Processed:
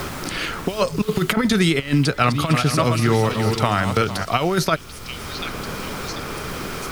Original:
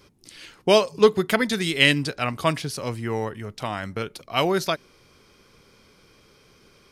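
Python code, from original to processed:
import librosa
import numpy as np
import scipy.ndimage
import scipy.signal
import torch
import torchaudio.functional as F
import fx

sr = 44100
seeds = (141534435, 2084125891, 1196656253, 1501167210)

y = fx.reverse_delay_fb(x, sr, ms=227, feedback_pct=48, wet_db=-8.5, at=(1.96, 4.25))
y = fx.over_compress(y, sr, threshold_db=-24.0, ratio=-0.5)
y = fx.low_shelf(y, sr, hz=160.0, db=7.0)
y = fx.dmg_noise_colour(y, sr, seeds[0], colour='pink', level_db=-50.0)
y = fx.peak_eq(y, sr, hz=1300.0, db=7.5, octaves=0.25)
y = fx.echo_stepped(y, sr, ms=740, hz=3200.0, octaves=0.7, feedback_pct=70, wet_db=-11.5)
y = fx.band_squash(y, sr, depth_pct=70)
y = y * 10.0 ** (4.5 / 20.0)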